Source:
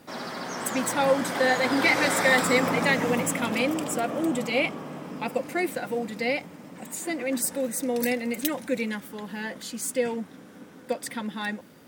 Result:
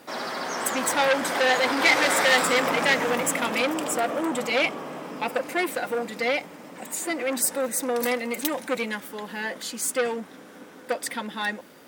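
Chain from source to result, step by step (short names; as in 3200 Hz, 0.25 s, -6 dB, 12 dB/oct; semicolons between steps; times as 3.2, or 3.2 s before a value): tone controls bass -12 dB, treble -1 dB; core saturation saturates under 2700 Hz; gain +5 dB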